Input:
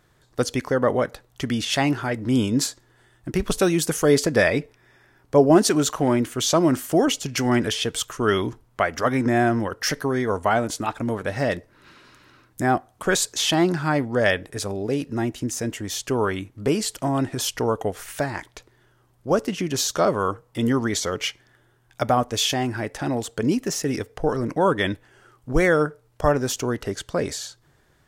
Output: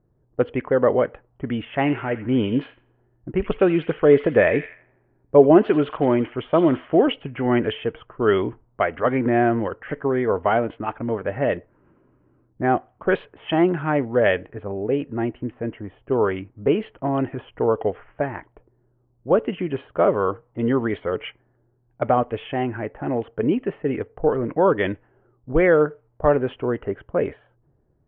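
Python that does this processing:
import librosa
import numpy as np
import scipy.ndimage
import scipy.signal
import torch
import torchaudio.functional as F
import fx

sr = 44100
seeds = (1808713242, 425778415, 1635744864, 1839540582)

y = fx.echo_wet_highpass(x, sr, ms=84, feedback_pct=58, hz=2100.0, wet_db=-7.0, at=(1.75, 7.13))
y = scipy.signal.sosfilt(scipy.signal.cheby1(6, 1.0, 3100.0, 'lowpass', fs=sr, output='sos'), y)
y = fx.env_lowpass(y, sr, base_hz=450.0, full_db=-16.5)
y = fx.dynamic_eq(y, sr, hz=450.0, q=1.4, threshold_db=-32.0, ratio=4.0, max_db=6)
y = y * 10.0 ** (-1.0 / 20.0)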